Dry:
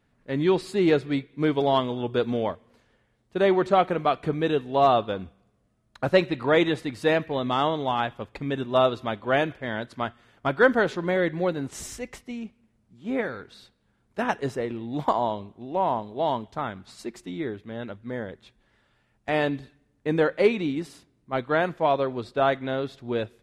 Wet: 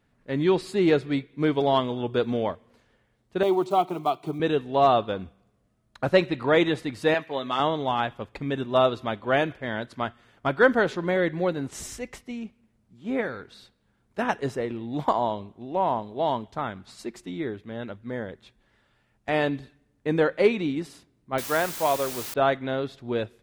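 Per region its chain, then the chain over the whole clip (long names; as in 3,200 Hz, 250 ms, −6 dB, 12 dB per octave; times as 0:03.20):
0:03.43–0:04.40: one scale factor per block 7 bits + high-pass filter 180 Hz + phaser with its sweep stopped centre 340 Hz, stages 8
0:07.14–0:07.60: high-pass filter 650 Hz 6 dB per octave + comb filter 7.3 ms, depth 49%
0:21.38–0:22.34: low-shelf EQ 360 Hz −6.5 dB + bit-depth reduction 6 bits, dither triangular
whole clip: no processing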